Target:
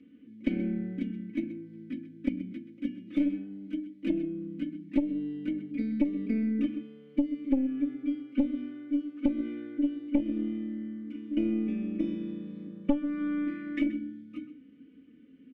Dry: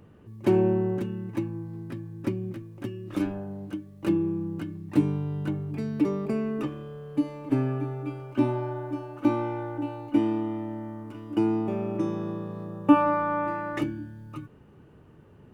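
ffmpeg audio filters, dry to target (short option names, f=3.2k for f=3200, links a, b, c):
-filter_complex "[0:a]asplit=3[a][b][c];[a]bandpass=f=270:t=q:w=8,volume=0dB[d];[b]bandpass=f=2.29k:t=q:w=8,volume=-6dB[e];[c]bandpass=f=3.01k:t=q:w=8,volume=-9dB[f];[d][e][f]amix=inputs=3:normalize=0,bandreject=f=50:t=h:w=6,bandreject=f=100:t=h:w=6,bandreject=f=150:t=h:w=6,bandreject=f=200:t=h:w=6,bandreject=f=250:t=h:w=6,bandreject=f=300:t=h:w=6,aecho=1:1:4:0.85,asplit=2[g][h];[h]adelay=128.3,volume=-14dB,highshelf=f=4k:g=-2.89[i];[g][i]amix=inputs=2:normalize=0,aeval=exprs='0.631*(cos(1*acos(clip(val(0)/0.631,-1,1)))-cos(1*PI/2))+0.282*(cos(4*acos(clip(val(0)/0.631,-1,1)))-cos(4*PI/2))+0.158*(cos(5*acos(clip(val(0)/0.631,-1,1)))-cos(5*PI/2))':c=same,acompressor=threshold=-22dB:ratio=10"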